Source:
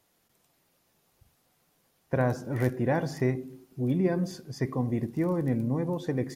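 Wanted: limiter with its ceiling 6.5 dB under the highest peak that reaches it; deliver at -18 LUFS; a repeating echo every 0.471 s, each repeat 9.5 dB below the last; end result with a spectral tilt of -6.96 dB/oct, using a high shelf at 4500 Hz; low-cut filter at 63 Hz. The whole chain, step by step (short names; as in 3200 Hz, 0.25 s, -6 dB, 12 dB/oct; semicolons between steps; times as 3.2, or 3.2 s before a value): HPF 63 Hz; high shelf 4500 Hz +6 dB; limiter -19 dBFS; feedback echo 0.471 s, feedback 33%, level -9.5 dB; gain +12.5 dB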